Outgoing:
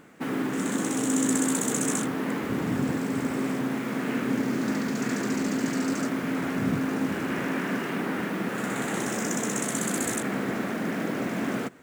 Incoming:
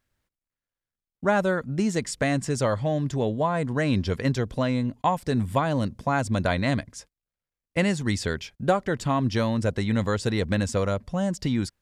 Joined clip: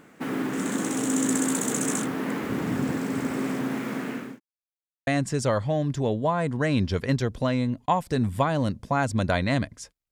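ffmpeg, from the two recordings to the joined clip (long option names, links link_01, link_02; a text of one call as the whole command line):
ffmpeg -i cue0.wav -i cue1.wav -filter_complex "[0:a]apad=whole_dur=10.11,atrim=end=10.11,asplit=2[link_01][link_02];[link_01]atrim=end=4.4,asetpts=PTS-STARTPTS,afade=type=out:start_time=3.75:duration=0.65:curve=qsin[link_03];[link_02]atrim=start=4.4:end=5.07,asetpts=PTS-STARTPTS,volume=0[link_04];[1:a]atrim=start=2.23:end=7.27,asetpts=PTS-STARTPTS,afade=type=in:duration=0.004:curve=hsin[link_05];[link_03][link_04][link_05]concat=n=3:v=0:a=1" out.wav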